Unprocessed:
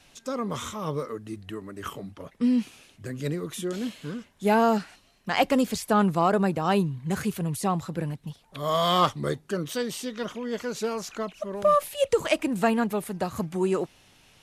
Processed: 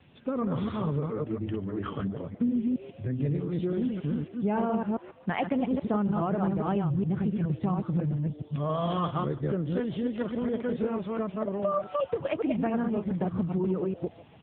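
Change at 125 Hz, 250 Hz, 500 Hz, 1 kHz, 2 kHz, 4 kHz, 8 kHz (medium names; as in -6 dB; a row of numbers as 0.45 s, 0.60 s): +2.5 dB, 0.0 dB, -4.0 dB, -7.5 dB, -9.0 dB, -14.5 dB, under -40 dB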